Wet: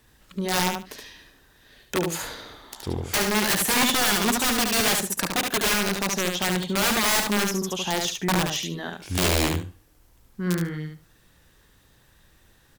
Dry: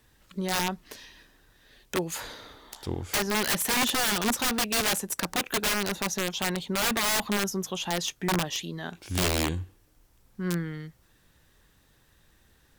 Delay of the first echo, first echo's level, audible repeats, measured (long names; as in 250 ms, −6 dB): 72 ms, −4.5 dB, 2